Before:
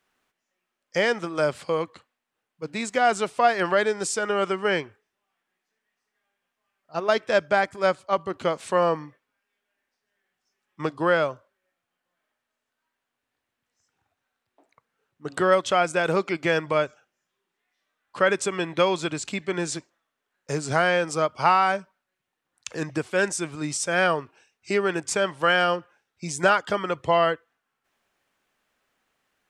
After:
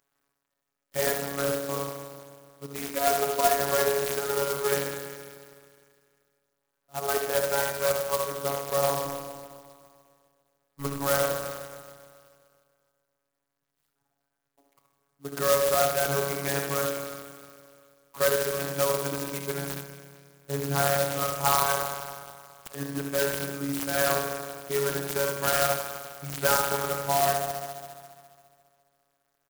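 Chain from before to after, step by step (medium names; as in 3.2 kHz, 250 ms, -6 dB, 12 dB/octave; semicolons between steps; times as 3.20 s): 9.03–11.02 s: octave divider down 2 oct, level +1 dB; on a send: delay 74 ms -5.5 dB; on the sum: spring tank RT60 2.1 s, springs 30/50 ms, chirp 25 ms, DRR 4.5 dB; robot voice 140 Hz; sampling jitter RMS 0.093 ms; trim -3 dB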